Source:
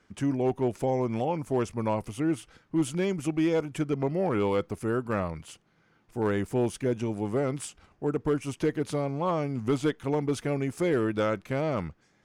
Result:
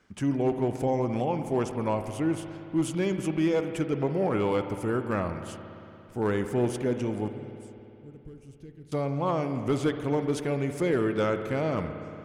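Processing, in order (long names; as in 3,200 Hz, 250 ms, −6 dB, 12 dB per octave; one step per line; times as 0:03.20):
0:07.28–0:08.92: guitar amp tone stack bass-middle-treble 10-0-1
spring reverb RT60 3 s, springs 57 ms, chirp 30 ms, DRR 7.5 dB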